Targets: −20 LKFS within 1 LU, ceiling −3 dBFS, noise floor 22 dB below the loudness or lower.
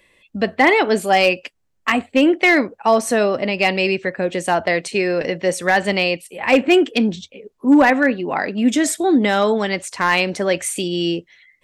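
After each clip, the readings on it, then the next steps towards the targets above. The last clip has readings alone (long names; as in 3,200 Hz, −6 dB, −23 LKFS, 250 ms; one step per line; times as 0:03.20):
share of clipped samples 0.6%; peaks flattened at −6.0 dBFS; integrated loudness −17.5 LKFS; sample peak −6.0 dBFS; target loudness −20.0 LKFS
→ clipped peaks rebuilt −6 dBFS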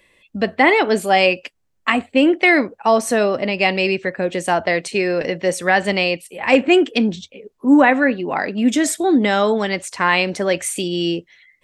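share of clipped samples 0.0%; integrated loudness −17.5 LKFS; sample peak −1.0 dBFS; target loudness −20.0 LKFS
→ level −2.5 dB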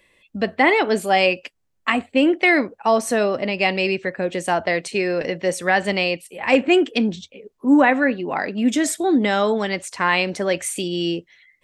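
integrated loudness −20.0 LKFS; sample peak −3.5 dBFS; background noise floor −68 dBFS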